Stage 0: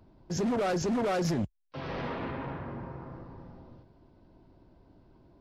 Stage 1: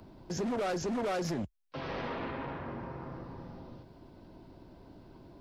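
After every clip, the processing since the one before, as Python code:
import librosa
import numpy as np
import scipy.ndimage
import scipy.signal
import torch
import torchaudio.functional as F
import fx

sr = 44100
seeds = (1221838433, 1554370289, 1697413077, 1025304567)

y = fx.dynamic_eq(x, sr, hz=130.0, q=0.89, threshold_db=-43.0, ratio=4.0, max_db=-5)
y = fx.band_squash(y, sr, depth_pct=40)
y = y * librosa.db_to_amplitude(-1.5)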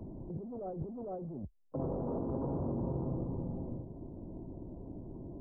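y = scipy.ndimage.gaussian_filter1d(x, 13.0, mode='constant')
y = fx.over_compress(y, sr, threshold_db=-43.0, ratio=-1.0)
y = y * librosa.db_to_amplitude(5.5)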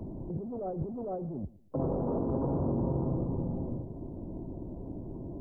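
y = fx.echo_feedback(x, sr, ms=116, feedback_pct=32, wet_db=-20.0)
y = y * librosa.db_to_amplitude(5.0)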